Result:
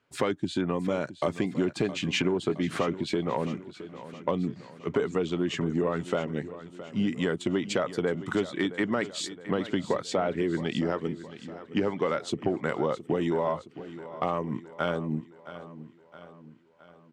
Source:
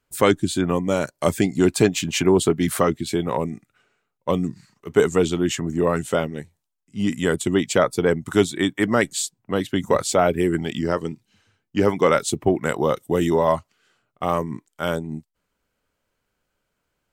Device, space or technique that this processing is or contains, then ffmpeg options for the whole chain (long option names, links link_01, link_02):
AM radio: -filter_complex "[0:a]asettb=1/sr,asplit=3[link_01][link_02][link_03];[link_01]atrim=end=7.694[link_04];[link_02]atrim=start=7.69:end=8.31,asetpts=PTS-STARTPTS,afade=type=in:duration=0.004:curve=qsin,afade=type=out:start_time=0.616:duration=0.004:curve=qsin,highshelf=frequency=5200:gain=5.5[link_05];[link_03]atrim=start=8.306[link_06];[link_04][link_05]acrossfade=duration=0.004:curve1=hsin:curve2=qsin[link_07];[link_07][link_06]acrossfade=duration=0.004:curve1=qsin:curve2=hsin,highpass=120,lowpass=3800,acompressor=threshold=-28dB:ratio=6,asoftclip=type=tanh:threshold=-16.5dB,aecho=1:1:667|1334|2001|2668|3335:0.188|0.0961|0.049|0.025|0.0127,volume=4dB"